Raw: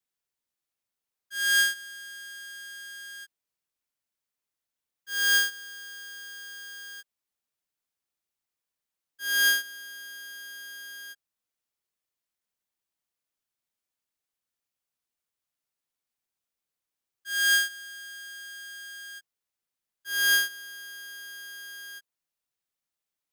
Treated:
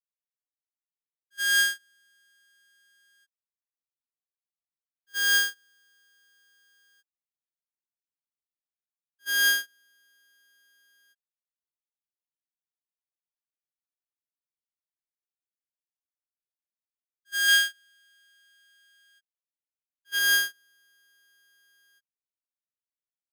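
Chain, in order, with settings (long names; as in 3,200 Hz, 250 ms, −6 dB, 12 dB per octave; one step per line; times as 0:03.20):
noise gate −31 dBFS, range −22 dB
0:17.48–0:20.19: parametric band 2,800 Hz +5.5 dB 1.1 octaves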